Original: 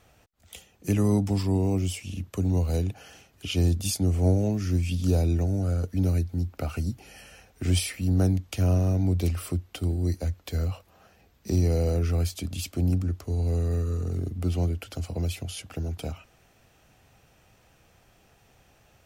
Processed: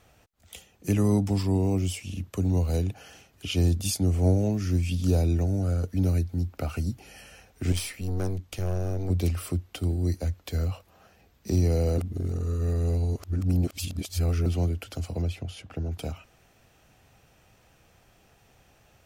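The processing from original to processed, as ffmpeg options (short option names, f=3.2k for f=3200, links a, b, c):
-filter_complex "[0:a]asettb=1/sr,asplit=3[a][b][c];[a]atrim=end=7.724[d];[b]atrim=start=7.72:end=9.1,asetpts=PTS-STARTPTS,afade=t=in:d=0.004:c=qsin,afade=t=out:st=1.376:d=0.004:c=qsin,aeval=exprs='(tanh(17.8*val(0)+0.6)-tanh(0.6))/17.8':c=same[e];[c]atrim=start=9.096[f];[d][e]acrossfade=d=0.004:c1=hsin:c2=qsin[g];[g][f]acrossfade=d=0.004:c1=qsin:c2=hsin,asettb=1/sr,asplit=3[h][i][j];[h]atrim=end=15.224[k];[i]atrim=start=15.22:end=15.92,asetpts=PTS-STARTPTS,afade=t=in:d=0.004:c=qsin,afade=t=out:st=0.696:d=0.004:c=qsin,lowpass=f=2.2k:p=1[l];[j]atrim=start=15.916[m];[k][l]acrossfade=d=0.004:c1=hsin:c2=qsin[n];[n][m]acrossfade=d=0.004:c1=qsin:c2=hsin,asplit=3[o][p][q];[o]atrim=end=11.982[r];[p]atrim=start=11.978:end=14.462,asetpts=PTS-STARTPTS,areverse[s];[q]atrim=start=14.458[t];[r][s]acrossfade=d=0.004:c1=hsin:c2=hsin[u];[u][t]acrossfade=d=0.004:c1=hsin:c2=hsin"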